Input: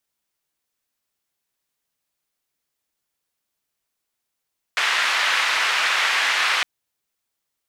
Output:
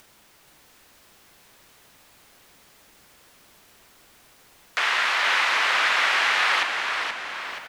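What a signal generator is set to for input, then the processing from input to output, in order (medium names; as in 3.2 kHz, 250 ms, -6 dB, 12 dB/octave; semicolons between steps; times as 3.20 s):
noise band 1.5–2 kHz, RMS -20.5 dBFS 1.86 s
treble shelf 4.1 kHz -10 dB; upward compressor, threshold -32 dBFS; on a send: frequency-shifting echo 477 ms, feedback 48%, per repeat -69 Hz, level -5.5 dB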